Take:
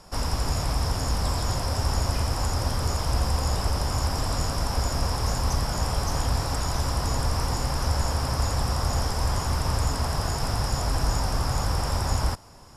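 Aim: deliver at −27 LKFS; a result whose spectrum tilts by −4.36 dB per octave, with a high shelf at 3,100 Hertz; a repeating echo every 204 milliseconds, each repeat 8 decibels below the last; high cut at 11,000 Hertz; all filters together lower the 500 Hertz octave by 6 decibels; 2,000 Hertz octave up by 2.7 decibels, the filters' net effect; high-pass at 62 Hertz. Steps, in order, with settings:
high-pass filter 62 Hz
low-pass filter 11,000 Hz
parametric band 500 Hz −8 dB
parametric band 2,000 Hz +5.5 dB
high-shelf EQ 3,100 Hz −4 dB
repeating echo 204 ms, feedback 40%, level −8 dB
level +1 dB

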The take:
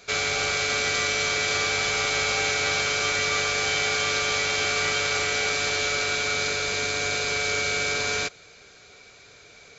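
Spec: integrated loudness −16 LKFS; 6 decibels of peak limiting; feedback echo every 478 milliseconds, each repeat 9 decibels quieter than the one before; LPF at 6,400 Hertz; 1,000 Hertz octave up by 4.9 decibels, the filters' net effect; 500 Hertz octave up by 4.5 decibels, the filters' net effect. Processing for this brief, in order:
low-pass filter 6,400 Hz
parametric band 500 Hz +4 dB
parametric band 1,000 Hz +6 dB
brickwall limiter −17 dBFS
repeating echo 478 ms, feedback 35%, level −9 dB
level +8 dB

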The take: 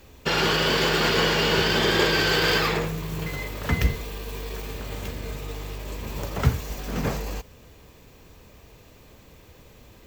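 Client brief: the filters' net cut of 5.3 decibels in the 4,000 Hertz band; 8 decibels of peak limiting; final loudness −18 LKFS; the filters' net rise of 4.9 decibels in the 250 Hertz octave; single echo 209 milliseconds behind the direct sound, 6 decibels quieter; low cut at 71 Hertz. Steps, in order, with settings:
high-pass filter 71 Hz
parametric band 250 Hz +7.5 dB
parametric band 4,000 Hz −7.5 dB
brickwall limiter −14.5 dBFS
single-tap delay 209 ms −6 dB
level +8 dB

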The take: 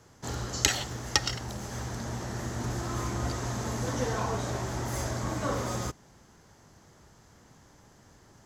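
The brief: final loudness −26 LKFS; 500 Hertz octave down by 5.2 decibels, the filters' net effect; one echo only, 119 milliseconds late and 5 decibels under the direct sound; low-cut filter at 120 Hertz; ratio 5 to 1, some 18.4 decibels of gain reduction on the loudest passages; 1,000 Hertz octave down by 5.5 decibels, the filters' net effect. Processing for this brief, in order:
high-pass filter 120 Hz
parametric band 500 Hz −5 dB
parametric band 1,000 Hz −5.5 dB
downward compressor 5 to 1, threshold −41 dBFS
single-tap delay 119 ms −5 dB
level +16.5 dB

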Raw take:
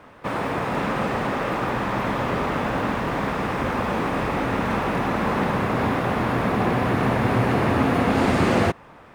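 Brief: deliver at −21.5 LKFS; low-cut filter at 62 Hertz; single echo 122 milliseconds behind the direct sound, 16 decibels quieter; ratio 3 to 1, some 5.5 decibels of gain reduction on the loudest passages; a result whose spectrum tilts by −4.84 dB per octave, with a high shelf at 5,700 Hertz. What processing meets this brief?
high-pass filter 62 Hz
high-shelf EQ 5,700 Hz +7.5 dB
downward compressor 3 to 1, threshold −23 dBFS
single-tap delay 122 ms −16 dB
level +4.5 dB

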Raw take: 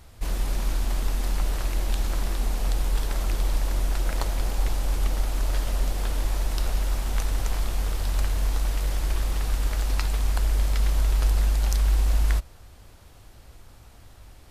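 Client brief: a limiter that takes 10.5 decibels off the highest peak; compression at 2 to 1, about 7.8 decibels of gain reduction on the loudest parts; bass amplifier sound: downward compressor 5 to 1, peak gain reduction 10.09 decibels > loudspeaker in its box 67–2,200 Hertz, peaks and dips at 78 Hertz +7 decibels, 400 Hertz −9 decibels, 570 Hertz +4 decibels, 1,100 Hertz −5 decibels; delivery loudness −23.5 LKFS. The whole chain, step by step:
downward compressor 2 to 1, threshold −32 dBFS
brickwall limiter −25 dBFS
downward compressor 5 to 1, threshold −39 dBFS
loudspeaker in its box 67–2,200 Hz, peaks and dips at 78 Hz +7 dB, 400 Hz −9 dB, 570 Hz +4 dB, 1,100 Hz −5 dB
level +29 dB

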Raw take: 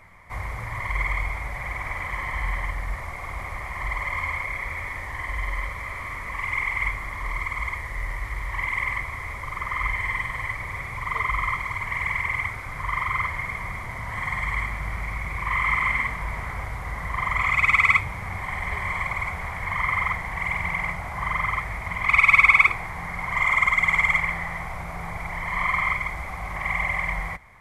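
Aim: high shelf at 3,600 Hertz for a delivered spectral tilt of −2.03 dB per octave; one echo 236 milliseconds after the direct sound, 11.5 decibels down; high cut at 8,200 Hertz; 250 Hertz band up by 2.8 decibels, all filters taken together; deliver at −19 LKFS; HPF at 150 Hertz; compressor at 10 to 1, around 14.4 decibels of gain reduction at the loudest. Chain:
high-pass filter 150 Hz
low-pass filter 8,200 Hz
parametric band 250 Hz +7 dB
high-shelf EQ 3,600 Hz +5 dB
downward compressor 10 to 1, threshold −25 dBFS
single-tap delay 236 ms −11.5 dB
level +10 dB

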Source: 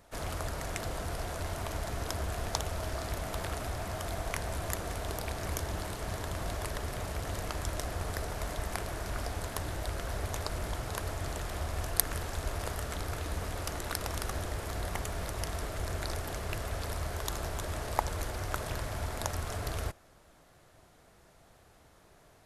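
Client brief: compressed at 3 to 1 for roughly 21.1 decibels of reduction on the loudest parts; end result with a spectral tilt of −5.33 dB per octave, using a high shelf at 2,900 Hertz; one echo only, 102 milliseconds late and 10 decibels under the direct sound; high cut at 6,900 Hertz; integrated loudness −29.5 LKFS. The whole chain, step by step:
low-pass filter 6,900 Hz
high-shelf EQ 2,900 Hz −5.5 dB
downward compressor 3 to 1, threshold −55 dBFS
single-tap delay 102 ms −10 dB
level +24 dB

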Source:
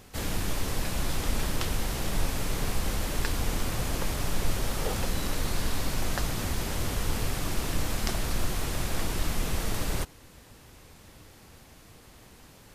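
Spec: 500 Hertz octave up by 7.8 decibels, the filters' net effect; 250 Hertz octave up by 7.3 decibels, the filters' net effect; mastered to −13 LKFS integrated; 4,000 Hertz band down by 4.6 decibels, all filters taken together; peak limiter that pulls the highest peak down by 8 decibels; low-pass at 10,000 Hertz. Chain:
low-pass filter 10,000 Hz
parametric band 250 Hz +7.5 dB
parametric band 500 Hz +7.5 dB
parametric band 4,000 Hz −6 dB
level +18 dB
brickwall limiter −1 dBFS

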